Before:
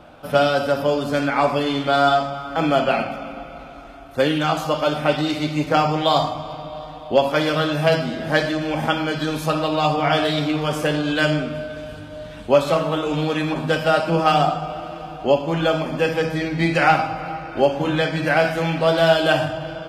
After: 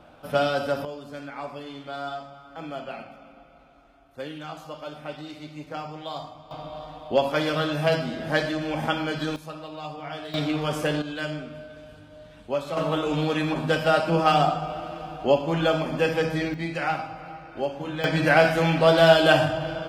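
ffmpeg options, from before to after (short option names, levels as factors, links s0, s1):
-af "asetnsamples=n=441:p=0,asendcmd='0.85 volume volume -17dB;6.51 volume volume -5dB;9.36 volume volume -17dB;10.34 volume volume -4.5dB;11.02 volume volume -12dB;12.77 volume volume -3dB;16.54 volume volume -11dB;18.04 volume volume 0dB',volume=0.501"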